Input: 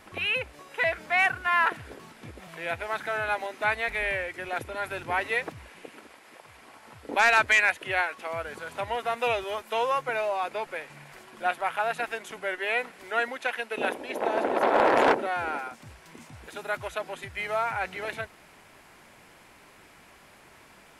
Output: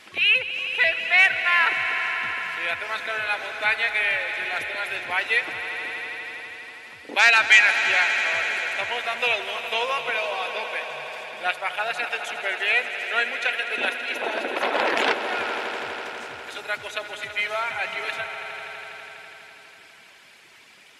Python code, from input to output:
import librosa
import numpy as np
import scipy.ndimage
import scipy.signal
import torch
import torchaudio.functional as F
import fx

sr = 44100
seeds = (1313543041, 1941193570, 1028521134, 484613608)

y = fx.weighting(x, sr, curve='D')
y = fx.dereverb_blind(y, sr, rt60_s=1.9)
y = fx.echo_swell(y, sr, ms=82, loudest=5, wet_db=-13.5)
y = y * librosa.db_to_amplitude(-1.0)